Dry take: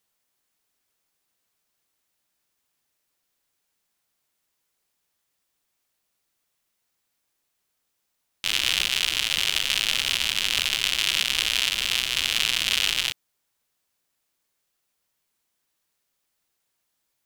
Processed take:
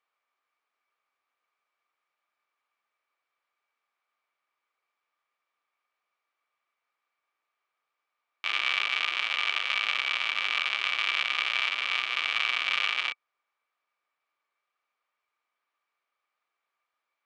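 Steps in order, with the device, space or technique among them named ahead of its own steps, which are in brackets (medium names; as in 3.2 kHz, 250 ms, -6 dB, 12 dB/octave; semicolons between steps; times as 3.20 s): tin-can telephone (band-pass 590–2200 Hz; small resonant body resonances 1.2/2.3 kHz, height 13 dB, ringing for 40 ms)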